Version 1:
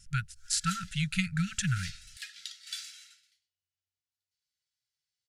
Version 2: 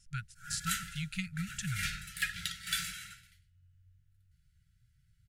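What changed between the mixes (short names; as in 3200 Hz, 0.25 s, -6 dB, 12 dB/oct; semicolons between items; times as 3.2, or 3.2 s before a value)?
speech -7.5 dB; background: remove band-pass 5100 Hz, Q 1.7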